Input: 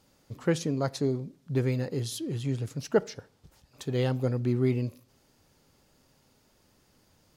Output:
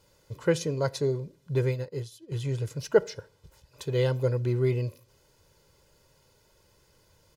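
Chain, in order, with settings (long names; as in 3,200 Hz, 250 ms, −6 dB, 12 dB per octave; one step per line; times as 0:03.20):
comb filter 2 ms, depth 69%
0:01.69–0:02.32: expander for the loud parts 2.5 to 1, over −38 dBFS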